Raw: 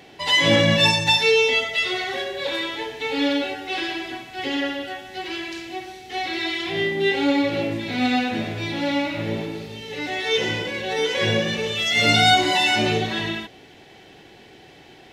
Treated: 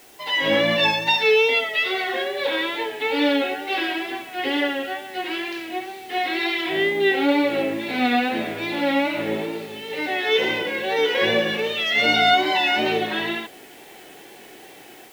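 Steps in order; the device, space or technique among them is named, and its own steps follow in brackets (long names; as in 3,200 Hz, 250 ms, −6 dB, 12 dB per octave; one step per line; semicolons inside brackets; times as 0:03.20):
dictaphone (band-pass filter 270–3,300 Hz; automatic gain control gain up to 8.5 dB; tape wow and flutter; white noise bed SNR 28 dB)
level −4.5 dB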